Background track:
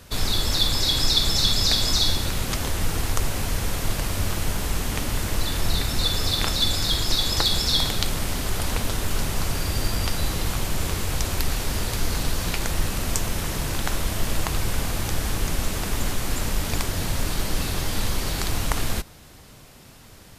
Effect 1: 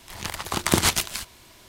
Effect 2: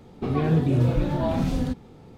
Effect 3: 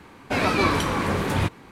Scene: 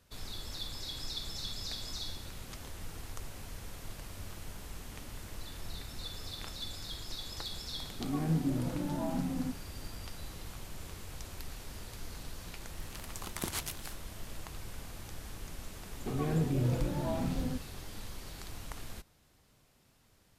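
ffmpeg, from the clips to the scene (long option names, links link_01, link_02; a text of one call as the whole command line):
ffmpeg -i bed.wav -i cue0.wav -i cue1.wav -filter_complex "[2:a]asplit=2[link_01][link_02];[0:a]volume=-19.5dB[link_03];[link_01]highpass=160,equalizer=frequency=170:width_type=q:width=4:gain=8,equalizer=frequency=280:width_type=q:width=4:gain=8,equalizer=frequency=430:width_type=q:width=4:gain=-8,equalizer=frequency=830:width_type=q:width=4:gain=4,lowpass=frequency=2200:width=0.5412,lowpass=frequency=2200:width=1.3066[link_04];[1:a]equalizer=frequency=12000:width=1.5:gain=7[link_05];[link_04]atrim=end=2.17,asetpts=PTS-STARTPTS,volume=-12.5dB,afade=type=in:duration=0.004:curve=hsin,afade=type=out:start_time=2.166:duration=0.004:curve=hsin,adelay=343098S[link_06];[link_05]atrim=end=1.68,asetpts=PTS-STARTPTS,volume=-18dB,afade=type=in:duration=0.004:curve=hsin,afade=type=out:start_time=1.676:duration=0.004:curve=hsin,adelay=12700[link_07];[link_02]atrim=end=2.17,asetpts=PTS-STARTPTS,volume=-9.5dB,afade=type=in:duration=0.004:curve=hsin,afade=type=out:start_time=2.166:duration=0.004:curve=hsin,adelay=15840[link_08];[link_03][link_06][link_07][link_08]amix=inputs=4:normalize=0" out.wav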